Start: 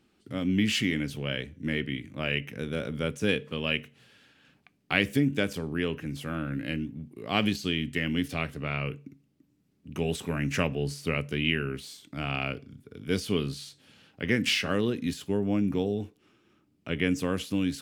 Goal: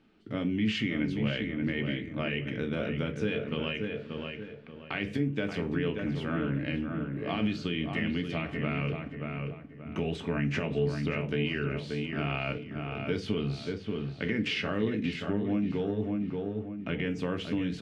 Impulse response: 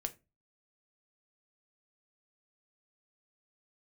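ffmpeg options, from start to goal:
-filter_complex "[0:a]alimiter=limit=-18.5dB:level=0:latency=1,asplit=2[a][b];[b]adelay=581,lowpass=f=2.4k:p=1,volume=-6.5dB,asplit=2[c][d];[d]adelay=581,lowpass=f=2.4k:p=1,volume=0.35,asplit=2[e][f];[f]adelay=581,lowpass=f=2.4k:p=1,volume=0.35,asplit=2[g][h];[h]adelay=581,lowpass=f=2.4k:p=1,volume=0.35[i];[a][c][e][g][i]amix=inputs=5:normalize=0,acompressor=threshold=-30dB:ratio=3,lowpass=3.3k[j];[1:a]atrim=start_sample=2205[k];[j][k]afir=irnorm=-1:irlink=0,volume=3.5dB"

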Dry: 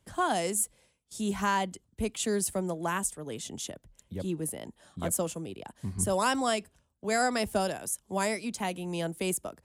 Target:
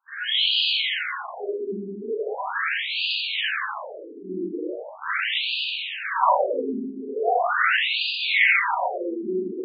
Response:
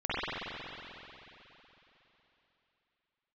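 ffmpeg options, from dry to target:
-filter_complex "[0:a]highpass=f=150:p=1,highshelf=f=8.4k:g=11,acrossover=split=300|1400[a][b][c];[c]aeval=exprs='0.141*sin(PI/2*5.01*val(0)/0.141)':c=same[d];[a][b][d]amix=inputs=3:normalize=0[e];[1:a]atrim=start_sample=2205,asetrate=52920,aresample=44100[f];[e][f]afir=irnorm=-1:irlink=0,afftfilt=real='re*between(b*sr/1024,280*pow(3500/280,0.5+0.5*sin(2*PI*0.4*pts/sr))/1.41,280*pow(3500/280,0.5+0.5*sin(2*PI*0.4*pts/sr))*1.41)':imag='im*between(b*sr/1024,280*pow(3500/280,0.5+0.5*sin(2*PI*0.4*pts/sr))/1.41,280*pow(3500/280,0.5+0.5*sin(2*PI*0.4*pts/sr))*1.41)':win_size=1024:overlap=0.75"

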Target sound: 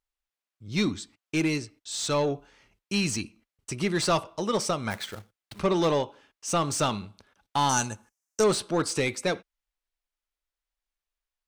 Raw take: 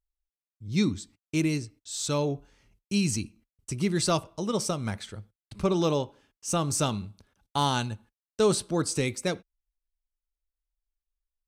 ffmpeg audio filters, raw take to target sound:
-filter_complex "[0:a]asplit=2[a][b];[b]highpass=f=720:p=1,volume=15dB,asoftclip=type=tanh:threshold=-13dB[c];[a][c]amix=inputs=2:normalize=0,lowpass=f=3.1k:p=1,volume=-6dB,asplit=3[d][e][f];[d]afade=t=out:st=4.9:d=0.02[g];[e]acrusher=bits=2:mode=log:mix=0:aa=0.000001,afade=t=in:st=4.9:d=0.02,afade=t=out:st=5.58:d=0.02[h];[f]afade=t=in:st=5.58:d=0.02[i];[g][h][i]amix=inputs=3:normalize=0,asettb=1/sr,asplit=3[j][k][l];[j]atrim=end=7.694[m];[k]atrim=start=7.69:end=8.44,asetpts=PTS-STARTPTS,afade=t=in:d=0.004:c=qsin,afade=t=out:st=0.746:d=0.004:c=qsin,highshelf=f=4.9k:t=q:w=3:g=9[n];[l]atrim=start=8.436[o];[m][n]acrossfade=d=0.004:c1=hsin:c2=qsin[p];[p][o]acrossfade=d=0.004:c1=qsin:c2=hsin,volume=-1dB"

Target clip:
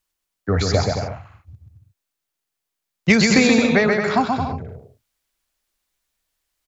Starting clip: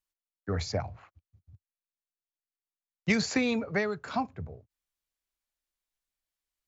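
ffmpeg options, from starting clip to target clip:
-af "aecho=1:1:130|221|284.7|329.3|360.5:0.631|0.398|0.251|0.158|0.1,acontrast=45,volume=5.5dB"

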